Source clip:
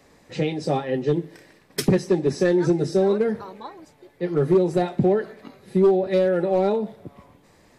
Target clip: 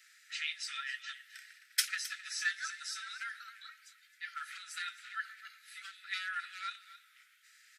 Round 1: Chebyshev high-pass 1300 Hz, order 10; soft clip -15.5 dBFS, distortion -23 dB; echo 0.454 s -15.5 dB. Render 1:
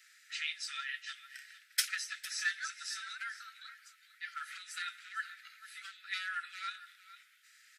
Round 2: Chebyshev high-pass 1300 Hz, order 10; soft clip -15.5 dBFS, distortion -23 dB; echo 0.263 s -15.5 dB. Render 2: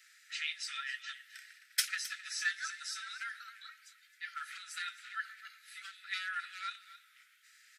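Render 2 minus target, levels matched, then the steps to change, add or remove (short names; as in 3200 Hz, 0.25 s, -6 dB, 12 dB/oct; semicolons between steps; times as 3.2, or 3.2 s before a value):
soft clip: distortion +9 dB
change: soft clip -9.5 dBFS, distortion -32 dB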